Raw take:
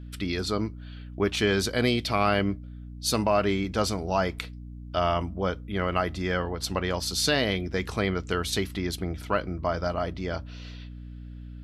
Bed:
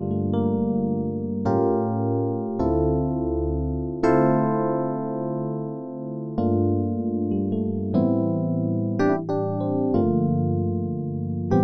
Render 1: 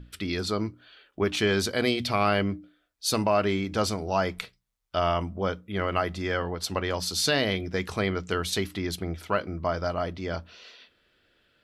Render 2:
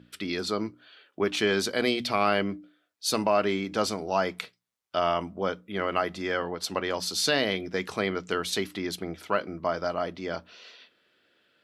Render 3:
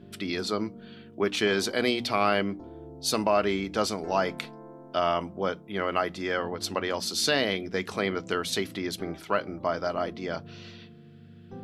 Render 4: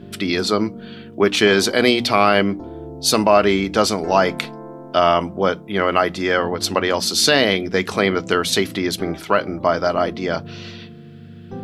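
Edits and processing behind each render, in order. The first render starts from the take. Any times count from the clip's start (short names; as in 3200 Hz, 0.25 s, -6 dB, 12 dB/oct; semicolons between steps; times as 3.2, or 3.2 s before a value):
notches 60/120/180/240/300 Hz
HPF 190 Hz 12 dB/oct; high shelf 10000 Hz -3.5 dB
add bed -23 dB
gain +10.5 dB; limiter -2 dBFS, peak gain reduction 2.5 dB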